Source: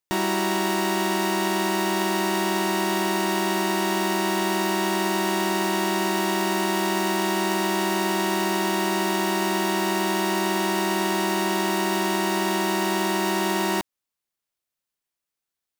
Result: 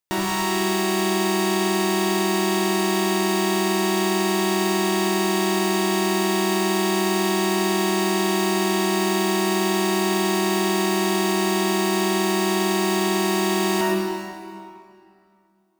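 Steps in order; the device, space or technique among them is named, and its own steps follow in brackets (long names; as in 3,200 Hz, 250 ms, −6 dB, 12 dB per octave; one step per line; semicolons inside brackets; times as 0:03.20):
stairwell (convolution reverb RT60 2.4 s, pre-delay 63 ms, DRR −1.5 dB)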